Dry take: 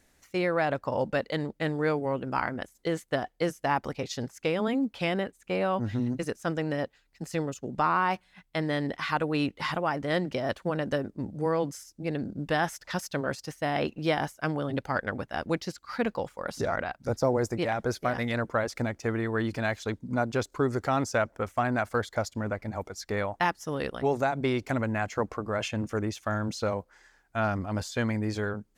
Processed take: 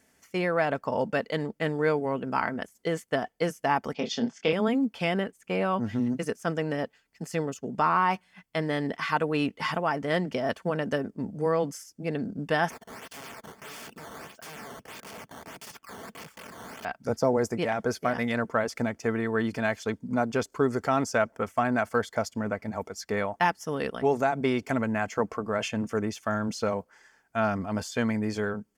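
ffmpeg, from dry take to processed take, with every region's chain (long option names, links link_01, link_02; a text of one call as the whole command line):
ffmpeg -i in.wav -filter_complex "[0:a]asettb=1/sr,asplit=3[link_01][link_02][link_03];[link_01]atrim=end=3.944[link_04];[link_02]atrim=start=3.94:end=4.53,asetpts=PTS-STARTPTS,afade=type=in:duration=0.004:curve=qsin,afade=type=out:start_time=0.586:duration=0.004:curve=qsin,highpass=frequency=150:width=0.5412,highpass=frequency=150:width=1.3066,equalizer=frequency=230:width_type=q:width=4:gain=6,equalizer=frequency=730:width_type=q:width=4:gain=4,equalizer=frequency=3400:width_type=q:width=4:gain=9,lowpass=frequency=6200:width=0.5412,lowpass=frequency=6200:width=1.3066,asplit=2[link_05][link_06];[link_06]adelay=26,volume=-6dB[link_07];[link_05][link_07]amix=inputs=2:normalize=0,atrim=end_sample=26019[link_08];[link_03]atrim=start=4.526[link_09];[link_04][link_08]acrossfade=duration=0.004:curve1=hsin:curve2=qsin[link_10];[link_10][link_09]acrossfade=duration=0.004:curve1=qsin:curve2=hsin,asettb=1/sr,asplit=3[link_11][link_12][link_13];[link_11]atrim=end=12.704[link_14];[link_12]atrim=start=12.7:end=16.85,asetpts=PTS-STARTPTS,afade=type=in:duration=0.004:curve=qsin,afade=type=out:start_time=4.146:duration=0.004:curve=qsin,acompressor=threshold=-33dB:ratio=4:attack=3.2:release=140:knee=1:detection=peak,acrusher=samples=10:mix=1:aa=0.000001:lfo=1:lforange=16:lforate=1.6,aeval=exprs='(mod(89.1*val(0)+1,2)-1)/89.1':channel_layout=same[link_15];[link_13]atrim=start=16.846[link_16];[link_14][link_15]acrossfade=duration=0.004:curve1=hsin:curve2=qsin[link_17];[link_17][link_16]acrossfade=duration=0.004:curve1=qsin:curve2=hsin,highpass=94,bandreject=frequency=3900:width=6.1,aecho=1:1:4.5:0.31,volume=1dB" out.wav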